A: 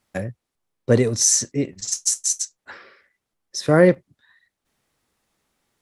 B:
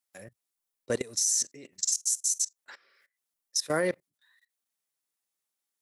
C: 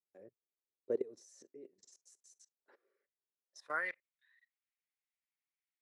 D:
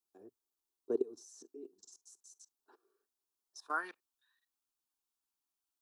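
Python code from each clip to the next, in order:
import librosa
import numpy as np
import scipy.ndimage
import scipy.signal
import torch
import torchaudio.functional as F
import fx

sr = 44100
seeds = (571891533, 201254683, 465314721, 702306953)

y1 = fx.riaa(x, sr, side='recording')
y1 = fx.level_steps(y1, sr, step_db=20)
y1 = F.gain(torch.from_numpy(y1), -6.0).numpy()
y2 = fx.filter_sweep_bandpass(y1, sr, from_hz=400.0, to_hz=2200.0, start_s=3.39, end_s=3.91, q=3.2)
y2 = F.gain(torch.from_numpy(y2), -1.0).numpy()
y3 = fx.fixed_phaser(y2, sr, hz=550.0, stages=6)
y3 = F.gain(torch.from_numpy(y3), 6.0).numpy()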